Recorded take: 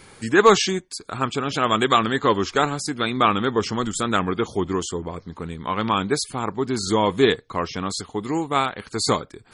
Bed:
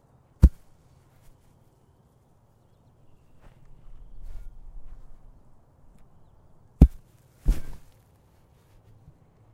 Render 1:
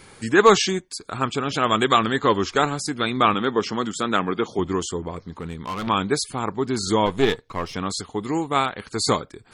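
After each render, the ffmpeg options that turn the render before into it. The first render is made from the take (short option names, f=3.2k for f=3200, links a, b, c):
-filter_complex "[0:a]asettb=1/sr,asplit=3[a][b][c];[a]atrim=end=3.344[d];[b]atrim=start=3.34:end=4.59,asetpts=PTS-STARTPTS,afade=t=in:d=0.004:c=qsin,afade=t=out:st=1.246:d=0.004:c=qsin,highpass=160,lowpass=6.4k[e];[c]atrim=start=4.586[f];[d][e]acrossfade=d=0.004:c1=hsin:c2=qsin[g];[g][f]acrossfade=d=0.004:c1=qsin:c2=hsin,asettb=1/sr,asplit=3[h][i][j];[h]atrim=end=5.164[k];[i]atrim=start=5.16:end=5.87,asetpts=PTS-STARTPTS,afade=t=in:d=0.004:c=qsin,afade=t=out:st=0.706:d=0.004:c=qsin,asoftclip=type=hard:threshold=-25.5dB[l];[j]atrim=start=5.866[m];[k][l]acrossfade=d=0.004:c1=hsin:c2=qsin[n];[n][m]acrossfade=d=0.004:c1=qsin:c2=hsin,asettb=1/sr,asplit=3[o][p][q];[o]atrim=end=7.064[r];[p]atrim=start=7.06:end=7.74,asetpts=PTS-STARTPTS,afade=t=in:d=0.004:c=qsin,afade=t=out:st=0.676:d=0.004:c=qsin,aeval=exprs='if(lt(val(0),0),0.447*val(0),val(0))':c=same[s];[q]atrim=start=7.736[t];[r][s]acrossfade=d=0.004:c1=hsin:c2=qsin[u];[u][t]acrossfade=d=0.004:c1=qsin:c2=hsin"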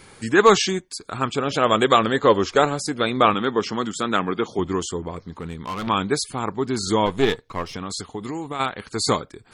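-filter_complex "[0:a]asettb=1/sr,asplit=3[a][b][c];[a]atrim=end=1.384[d];[b]atrim=start=1.38:end=3.3,asetpts=PTS-STARTPTS,afade=t=in:d=0.004:c=qsin,afade=t=out:st=1.916:d=0.004:c=qsin,equalizer=f=540:w=2.2:g=7.5[e];[c]atrim=start=3.296[f];[d][e]acrossfade=d=0.004:c1=hsin:c2=qsin[g];[g][f]acrossfade=d=0.004:c1=qsin:c2=hsin,asplit=3[h][i][j];[h]afade=t=out:st=7.62:d=0.02[k];[i]acompressor=threshold=-25dB:ratio=6:attack=3.2:release=140:knee=1:detection=peak,afade=t=in:st=7.62:d=0.02,afade=t=out:st=8.59:d=0.02[l];[j]afade=t=in:st=8.59:d=0.02[m];[k][l][m]amix=inputs=3:normalize=0"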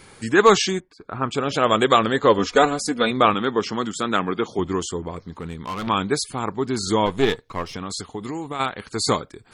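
-filter_complex "[0:a]asettb=1/sr,asplit=3[a][b][c];[a]atrim=end=0.804[d];[b]atrim=start=0.8:end=1.31,asetpts=PTS-STARTPTS,afade=t=in:d=0.004:c=qsin,afade=t=out:st=0.506:d=0.004:c=qsin,lowpass=1.7k[e];[c]atrim=start=1.306[f];[d][e]acrossfade=d=0.004:c1=hsin:c2=qsin[g];[g][f]acrossfade=d=0.004:c1=qsin:c2=hsin,asettb=1/sr,asplit=3[h][i][j];[h]atrim=end=2.384[k];[i]atrim=start=2.38:end=3.11,asetpts=PTS-STARTPTS,afade=t=in:d=0.004:c=qsin,afade=t=out:st=0.726:d=0.004:c=qsin,aecho=1:1:4.1:0.65,atrim=end_sample=32193[l];[j]atrim=start=3.106[m];[k][l]acrossfade=d=0.004:c1=hsin:c2=qsin[n];[n][m]acrossfade=d=0.004:c1=qsin:c2=hsin"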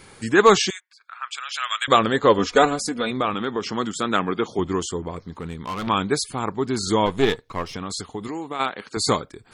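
-filter_complex "[0:a]asettb=1/sr,asplit=3[a][b][c];[a]atrim=end=0.704[d];[b]atrim=start=0.7:end=1.88,asetpts=PTS-STARTPTS,afade=t=in:d=0.004:c=qsin,afade=t=out:st=1.176:d=0.004:c=qsin,highpass=f=1.4k:w=0.5412,highpass=f=1.4k:w=1.3066[e];[c]atrim=start=1.876[f];[d][e]acrossfade=d=0.004:c1=hsin:c2=qsin[g];[g][f]acrossfade=d=0.004:c1=qsin:c2=hsin,asettb=1/sr,asplit=3[h][i][j];[h]atrim=end=2.754[k];[i]atrim=start=2.75:end=3.76,asetpts=PTS-STARTPTS,afade=t=in:d=0.004:c=qsin,afade=t=out:st=1.006:d=0.004:c=qsin,acompressor=threshold=-23dB:ratio=2:attack=3.2:release=140:knee=1:detection=peak[l];[j]atrim=start=3.756[m];[k][l]acrossfade=d=0.004:c1=hsin:c2=qsin[n];[n][m]acrossfade=d=0.004:c1=qsin:c2=hsin,asettb=1/sr,asplit=3[o][p][q];[o]atrim=end=8.284[r];[p]atrim=start=8.28:end=8.97,asetpts=PTS-STARTPTS,afade=t=in:d=0.004:c=qsin,afade=t=out:st=0.686:d=0.004:c=qsin,highpass=210,lowpass=6.8k[s];[q]atrim=start=8.966[t];[r][s]acrossfade=d=0.004:c1=hsin:c2=qsin[u];[u][t]acrossfade=d=0.004:c1=qsin:c2=hsin"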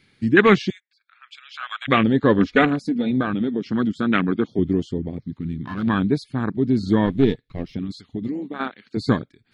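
-af "afwtdn=0.0708,equalizer=f=125:t=o:w=1:g=6,equalizer=f=250:t=o:w=1:g=8,equalizer=f=500:t=o:w=1:g=-4,equalizer=f=1k:t=o:w=1:g=-8,equalizer=f=2k:t=o:w=1:g=8,equalizer=f=4k:t=o:w=1:g=9,equalizer=f=8k:t=o:w=1:g=-10"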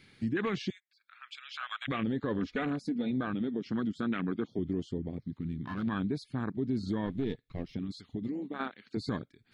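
-af "alimiter=limit=-12.5dB:level=0:latency=1:release=30,acompressor=threshold=-48dB:ratio=1.5"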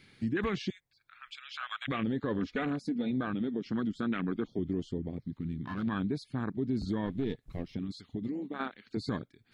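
-filter_complex "[1:a]volume=-29.5dB[a];[0:a][a]amix=inputs=2:normalize=0"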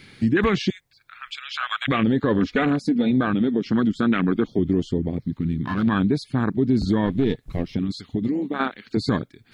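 -af "volume=12dB"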